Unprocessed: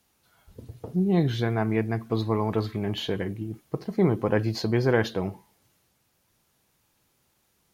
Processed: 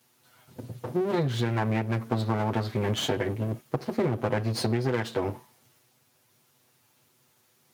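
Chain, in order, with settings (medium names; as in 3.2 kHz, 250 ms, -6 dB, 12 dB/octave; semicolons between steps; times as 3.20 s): comb filter that takes the minimum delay 8 ms; high-pass 100 Hz 24 dB/octave; compression 10:1, threshold -28 dBFS, peak gain reduction 12.5 dB; trim +5.5 dB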